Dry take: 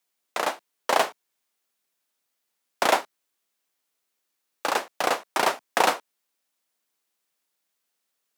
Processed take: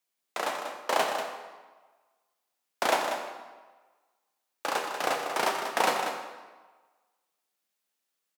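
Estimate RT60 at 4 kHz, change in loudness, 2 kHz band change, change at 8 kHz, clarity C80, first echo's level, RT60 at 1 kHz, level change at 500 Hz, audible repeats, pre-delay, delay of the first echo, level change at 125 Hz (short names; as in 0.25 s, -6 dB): 1.0 s, -4.0 dB, -3.5 dB, -4.0 dB, 4.5 dB, -8.5 dB, 1.4 s, -3.0 dB, 1, 16 ms, 0.19 s, -3.0 dB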